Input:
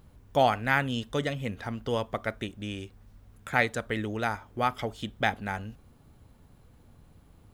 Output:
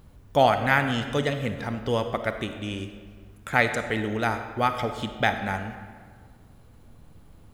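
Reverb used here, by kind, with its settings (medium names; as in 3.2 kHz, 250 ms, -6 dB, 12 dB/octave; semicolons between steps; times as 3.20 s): algorithmic reverb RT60 1.7 s, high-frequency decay 0.65×, pre-delay 15 ms, DRR 8 dB; trim +3.5 dB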